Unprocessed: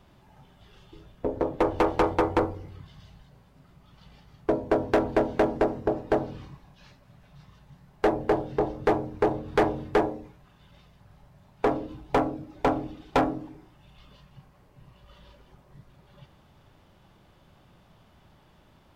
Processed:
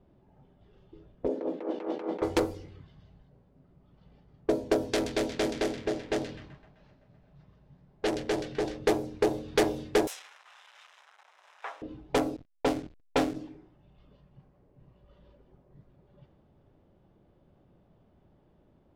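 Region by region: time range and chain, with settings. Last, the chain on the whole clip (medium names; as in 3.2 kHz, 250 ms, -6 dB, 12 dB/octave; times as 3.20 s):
1.28–2.22 s: steep high-pass 180 Hz 72 dB/octave + treble shelf 2.7 kHz -11.5 dB + compressor with a negative ratio -31 dBFS
4.89–8.79 s: hard clipper -22 dBFS + feedback echo behind a high-pass 128 ms, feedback 77%, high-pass 1.6 kHz, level -10 dB
10.07–11.82 s: jump at every zero crossing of -34 dBFS + inverse Chebyshev high-pass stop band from 160 Hz, stop band 80 dB + band-stop 4.5 kHz, Q 7.1
12.36–13.36 s: low-pass 2.9 kHz + hum notches 50/100/150 Hz + hysteresis with a dead band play -29.5 dBFS
whole clip: peaking EQ 990 Hz -14.5 dB 2.1 oct; level-controlled noise filter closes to 760 Hz, open at -27 dBFS; tone controls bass -12 dB, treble +9 dB; trim +6.5 dB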